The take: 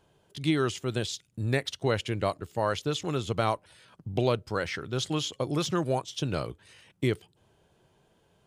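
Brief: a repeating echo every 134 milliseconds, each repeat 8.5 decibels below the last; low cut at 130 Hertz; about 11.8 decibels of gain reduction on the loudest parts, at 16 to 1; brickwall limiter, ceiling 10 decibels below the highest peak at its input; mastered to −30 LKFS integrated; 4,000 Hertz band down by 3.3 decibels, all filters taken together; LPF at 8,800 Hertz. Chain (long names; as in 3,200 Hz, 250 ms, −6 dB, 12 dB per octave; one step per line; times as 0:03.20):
high-pass filter 130 Hz
low-pass filter 8,800 Hz
parametric band 4,000 Hz −4 dB
downward compressor 16 to 1, threshold −33 dBFS
brickwall limiter −30.5 dBFS
repeating echo 134 ms, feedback 38%, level −8.5 dB
level +12 dB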